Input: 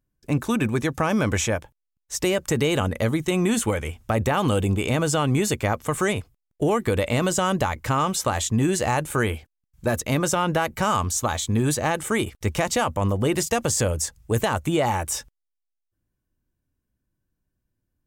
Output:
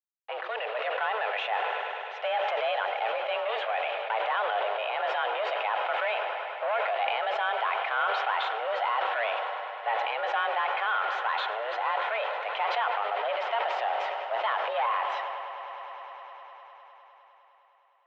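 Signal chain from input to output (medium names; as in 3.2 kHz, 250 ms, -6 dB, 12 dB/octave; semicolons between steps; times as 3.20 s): in parallel at -4.5 dB: saturation -25.5 dBFS, distortion -8 dB; on the sum: bit crusher 6-bit; hard clipper -17.5 dBFS, distortion -13 dB; echo with a slow build-up 102 ms, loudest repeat 5, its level -17 dB; on a send at -15 dB: reverberation RT60 0.50 s, pre-delay 104 ms; on the sum: mistuned SSB +220 Hz 370–3000 Hz; decay stretcher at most 20 dB/s; trim -5.5 dB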